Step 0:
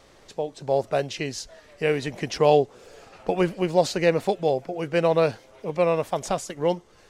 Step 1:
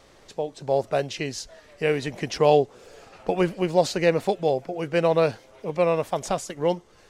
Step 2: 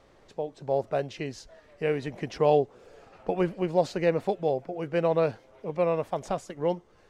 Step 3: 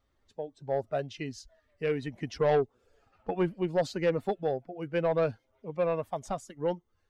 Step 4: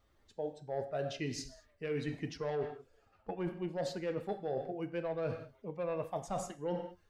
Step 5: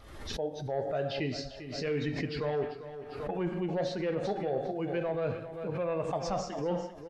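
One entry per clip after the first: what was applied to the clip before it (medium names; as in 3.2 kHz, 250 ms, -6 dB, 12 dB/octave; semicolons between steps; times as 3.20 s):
no audible change
treble shelf 3 kHz -11 dB; trim -3.5 dB
expander on every frequency bin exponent 1.5; saturation -20 dBFS, distortion -14 dB; trim +1.5 dB
gain riding within 4 dB 0.5 s; gated-style reverb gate 240 ms falling, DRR 8.5 dB; reverse; compression 6:1, threshold -35 dBFS, peak gain reduction 12.5 dB; reverse; trim +1 dB
knee-point frequency compression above 3.5 kHz 1.5:1; feedback delay 396 ms, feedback 30%, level -12 dB; swell ahead of each attack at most 55 dB/s; trim +4 dB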